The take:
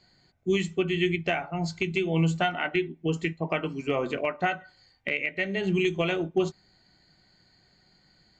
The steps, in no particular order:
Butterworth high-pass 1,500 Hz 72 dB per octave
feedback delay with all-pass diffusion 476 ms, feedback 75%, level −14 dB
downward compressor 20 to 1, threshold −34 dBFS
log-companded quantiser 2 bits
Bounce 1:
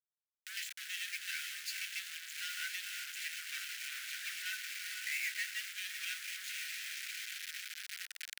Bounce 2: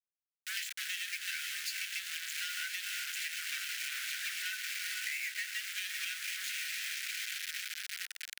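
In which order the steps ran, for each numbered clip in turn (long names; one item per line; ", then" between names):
feedback delay with all-pass diffusion, then log-companded quantiser, then downward compressor, then Butterworth high-pass
feedback delay with all-pass diffusion, then log-companded quantiser, then Butterworth high-pass, then downward compressor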